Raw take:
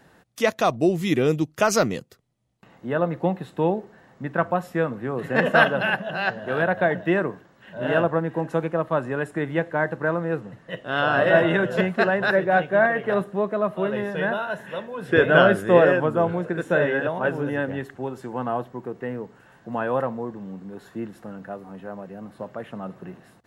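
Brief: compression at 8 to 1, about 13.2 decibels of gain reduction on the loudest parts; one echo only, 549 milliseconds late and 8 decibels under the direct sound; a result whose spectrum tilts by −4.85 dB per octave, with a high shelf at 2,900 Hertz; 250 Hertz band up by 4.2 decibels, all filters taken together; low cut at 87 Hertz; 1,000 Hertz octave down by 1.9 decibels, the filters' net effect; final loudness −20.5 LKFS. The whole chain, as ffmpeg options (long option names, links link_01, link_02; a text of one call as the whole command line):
ffmpeg -i in.wav -af "highpass=87,equalizer=frequency=250:width_type=o:gain=6.5,equalizer=frequency=1000:width_type=o:gain=-4.5,highshelf=frequency=2900:gain=7.5,acompressor=threshold=-24dB:ratio=8,aecho=1:1:549:0.398,volume=9dB" out.wav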